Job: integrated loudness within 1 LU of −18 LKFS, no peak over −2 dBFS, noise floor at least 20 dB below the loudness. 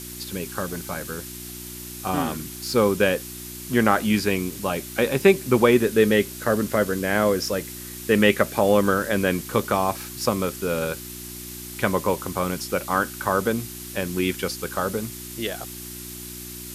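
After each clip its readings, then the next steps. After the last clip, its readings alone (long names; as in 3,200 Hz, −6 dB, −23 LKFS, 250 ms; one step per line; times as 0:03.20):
mains hum 60 Hz; hum harmonics up to 360 Hz; level of the hum −38 dBFS; background noise floor −37 dBFS; target noise floor −43 dBFS; integrated loudness −23.0 LKFS; sample peak −2.5 dBFS; target loudness −18.0 LKFS
→ hum removal 60 Hz, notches 6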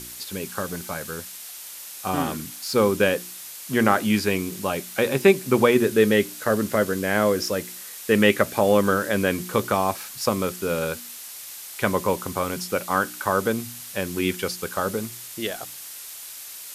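mains hum none found; background noise floor −39 dBFS; target noise floor −44 dBFS
→ noise reduction from a noise print 6 dB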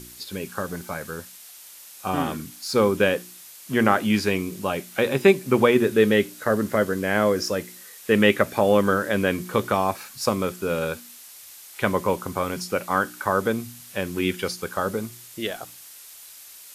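background noise floor −45 dBFS; integrated loudness −23.5 LKFS; sample peak −2.5 dBFS; target loudness −18.0 LKFS
→ level +5.5 dB
brickwall limiter −2 dBFS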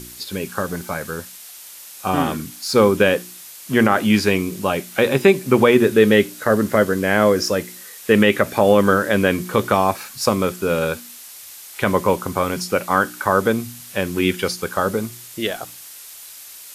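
integrated loudness −18.5 LKFS; sample peak −2.0 dBFS; background noise floor −39 dBFS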